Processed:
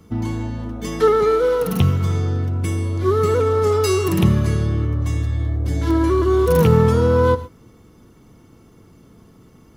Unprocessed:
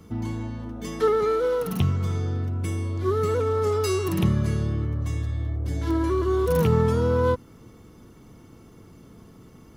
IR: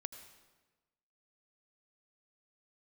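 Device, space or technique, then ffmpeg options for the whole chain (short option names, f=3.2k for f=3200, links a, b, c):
keyed gated reverb: -filter_complex "[0:a]asplit=3[a][b][c];[1:a]atrim=start_sample=2205[d];[b][d]afir=irnorm=-1:irlink=0[e];[c]apad=whole_len=430697[f];[e][f]sidechaingate=range=-33dB:threshold=-35dB:ratio=16:detection=peak,volume=4dB[g];[a][g]amix=inputs=2:normalize=0"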